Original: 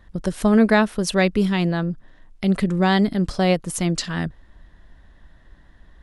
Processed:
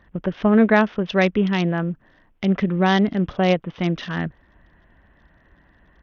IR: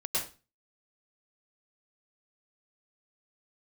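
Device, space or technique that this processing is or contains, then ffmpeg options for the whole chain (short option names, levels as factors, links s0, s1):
Bluetooth headset: -af "highpass=f=110:p=1,aresample=8000,aresample=44100,volume=1.12" -ar 48000 -c:a sbc -b:a 64k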